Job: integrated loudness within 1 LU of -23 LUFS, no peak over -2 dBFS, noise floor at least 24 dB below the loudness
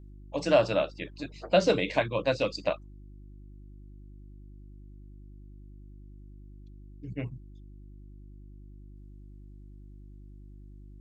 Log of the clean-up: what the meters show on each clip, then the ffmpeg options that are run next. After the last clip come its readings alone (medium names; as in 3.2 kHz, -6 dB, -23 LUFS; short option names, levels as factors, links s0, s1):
hum 50 Hz; highest harmonic 350 Hz; hum level -45 dBFS; loudness -28.5 LUFS; peak level -10.0 dBFS; loudness target -23.0 LUFS
-> -af "bandreject=f=50:t=h:w=4,bandreject=f=100:t=h:w=4,bandreject=f=150:t=h:w=4,bandreject=f=200:t=h:w=4,bandreject=f=250:t=h:w=4,bandreject=f=300:t=h:w=4,bandreject=f=350:t=h:w=4"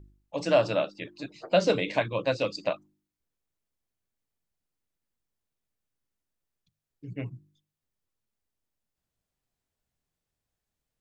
hum not found; loudness -28.0 LUFS; peak level -10.0 dBFS; loudness target -23.0 LUFS
-> -af "volume=1.78"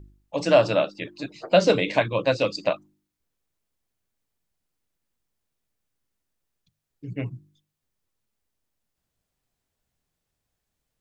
loudness -23.0 LUFS; peak level -5.0 dBFS; noise floor -82 dBFS